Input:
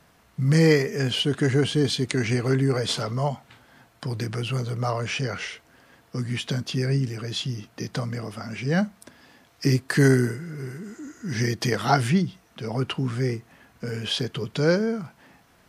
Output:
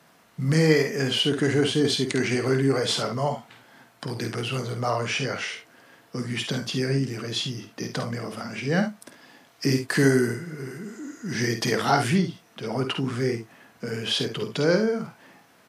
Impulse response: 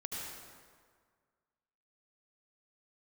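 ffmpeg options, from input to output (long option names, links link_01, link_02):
-filter_complex "[0:a]highpass=170,asplit=2[link_01][link_02];[link_02]alimiter=limit=-16.5dB:level=0:latency=1:release=24,volume=-1.5dB[link_03];[link_01][link_03]amix=inputs=2:normalize=0,aecho=1:1:51|69:0.398|0.251,volume=-4dB"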